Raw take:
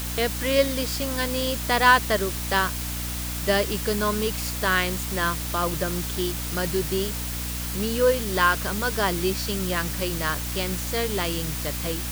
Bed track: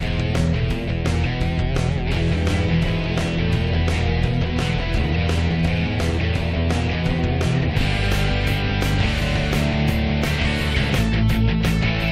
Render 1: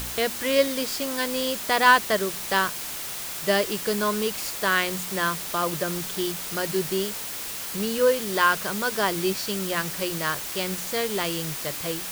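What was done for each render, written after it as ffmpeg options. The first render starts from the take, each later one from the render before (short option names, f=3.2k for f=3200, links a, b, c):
-af "bandreject=f=60:t=h:w=4,bandreject=f=120:t=h:w=4,bandreject=f=180:t=h:w=4,bandreject=f=240:t=h:w=4,bandreject=f=300:t=h:w=4"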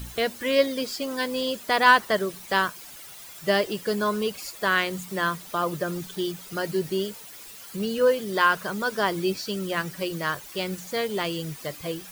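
-af "afftdn=nr=13:nf=-34"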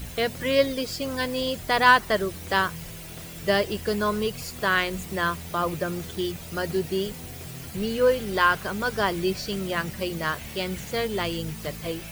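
-filter_complex "[1:a]volume=-20.5dB[a];[0:a][a]amix=inputs=2:normalize=0"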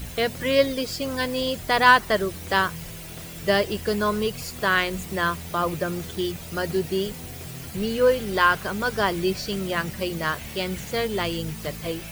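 -af "volume=1.5dB"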